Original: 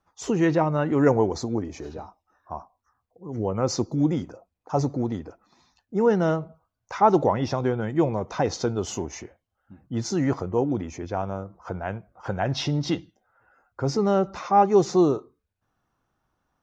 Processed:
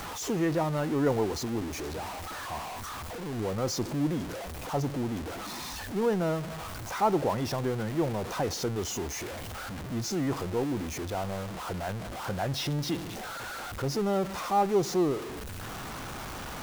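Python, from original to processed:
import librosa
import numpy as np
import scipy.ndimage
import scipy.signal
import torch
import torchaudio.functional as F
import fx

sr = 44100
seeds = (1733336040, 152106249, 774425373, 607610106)

y = x + 0.5 * 10.0 ** (-24.0 / 20.0) * np.sign(x)
y = y * 10.0 ** (-8.5 / 20.0)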